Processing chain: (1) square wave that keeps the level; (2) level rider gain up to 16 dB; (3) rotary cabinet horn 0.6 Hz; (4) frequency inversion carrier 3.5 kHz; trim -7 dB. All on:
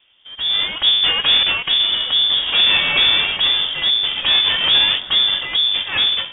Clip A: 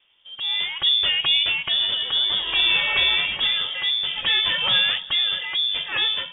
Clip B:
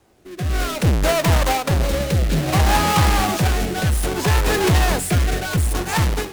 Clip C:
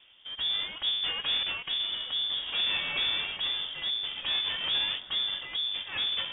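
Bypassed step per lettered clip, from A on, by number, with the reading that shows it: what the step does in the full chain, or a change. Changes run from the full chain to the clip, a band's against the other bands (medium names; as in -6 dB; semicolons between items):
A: 1, distortion -5 dB; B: 4, 2 kHz band -18.5 dB; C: 2, loudness change -14.5 LU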